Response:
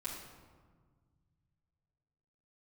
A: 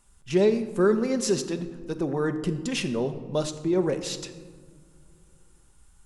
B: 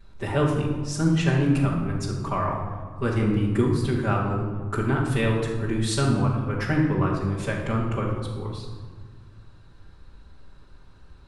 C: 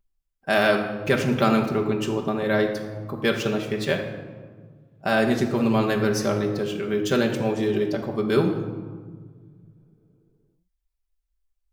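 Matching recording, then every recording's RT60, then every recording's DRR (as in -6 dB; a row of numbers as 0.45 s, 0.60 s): B; no single decay rate, 1.6 s, 1.6 s; 7.0 dB, -9.0 dB, 1.0 dB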